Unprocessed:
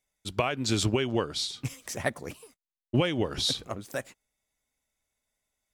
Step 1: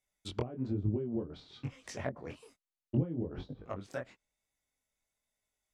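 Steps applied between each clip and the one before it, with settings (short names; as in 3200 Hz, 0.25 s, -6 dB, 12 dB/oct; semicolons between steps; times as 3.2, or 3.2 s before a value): treble ducked by the level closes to 320 Hz, closed at -24 dBFS; chorus 1.1 Hz, delay 19.5 ms, depth 5.2 ms; gain -1.5 dB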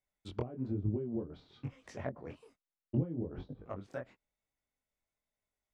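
high shelf 2900 Hz -11.5 dB; gain -1.5 dB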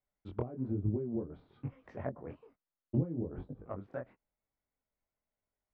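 LPF 1600 Hz 12 dB/oct; gain +1 dB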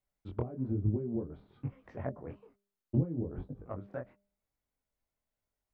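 low shelf 150 Hz +4.5 dB; de-hum 200.9 Hz, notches 3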